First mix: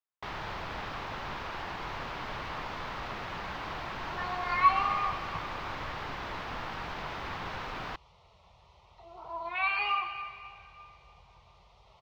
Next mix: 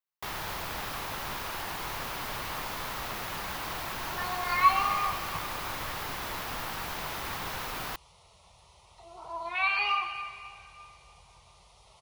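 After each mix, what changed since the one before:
master: remove high-frequency loss of the air 200 metres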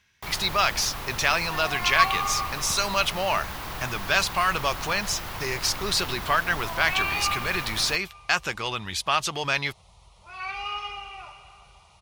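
speech: unmuted
second sound: entry −2.65 s
master: add low-shelf EQ 140 Hz +9 dB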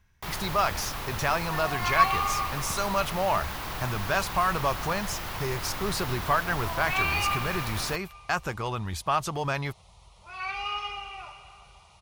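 speech: remove meter weighting curve D

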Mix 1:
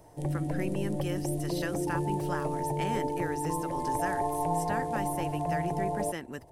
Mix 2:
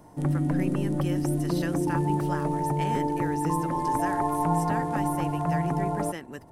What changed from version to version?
background: remove phaser with its sweep stopped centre 550 Hz, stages 4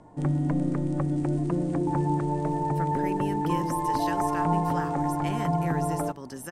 speech: entry +2.45 s
background: add Butterworth low-pass 9,100 Hz 72 dB per octave

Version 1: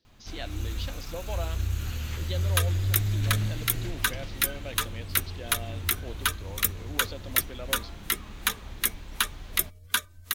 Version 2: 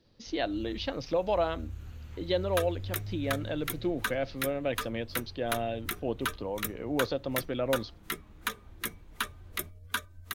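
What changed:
speech +11.0 dB
first sound −11.5 dB
master: add high-shelf EQ 2,000 Hz −11.5 dB

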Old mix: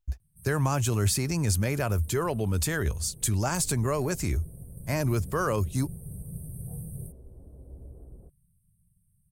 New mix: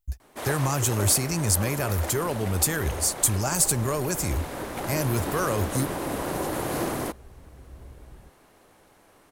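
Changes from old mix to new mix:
first sound: remove linear-phase brick-wall band-stop 190–8,200 Hz
master: add high-shelf EQ 6,500 Hz +11.5 dB

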